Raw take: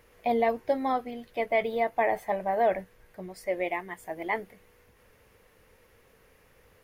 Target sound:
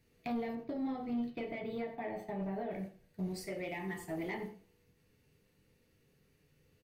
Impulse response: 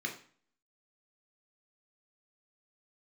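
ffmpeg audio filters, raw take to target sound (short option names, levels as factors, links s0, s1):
-filter_complex "[0:a]aecho=1:1:87:0.168,acompressor=threshold=0.0282:ratio=16,equalizer=f=125:t=o:w=1:g=7,equalizer=f=500:t=o:w=1:g=-10,equalizer=f=1000:t=o:w=1:g=-5,equalizer=f=2000:t=o:w=1:g=-12,agate=range=0.251:threshold=0.00316:ratio=16:detection=peak[s0];[1:a]atrim=start_sample=2205,asetrate=52920,aresample=44100[s1];[s0][s1]afir=irnorm=-1:irlink=0,asoftclip=type=tanh:threshold=0.0168,asettb=1/sr,asplit=3[s2][s3][s4];[s2]atrim=end=0.554[s5];[s3]atrim=start=0.55:end=2.71,asetpts=PTS-STARTPTS,afade=t=in:d=0.004:c=qsin,afade=t=out:st=2.156:d=0.004:c=qsin,equalizer=f=10000:w=0.41:g=-11.5[s6];[s4]atrim=start=2.706[s7];[s5][s6]acrossfade=d=0.004:c1=hsin:c2=qsin[s8];[s8][s7]acrossfade=d=0.004:c1=qsin:c2=hsin,volume=1.88"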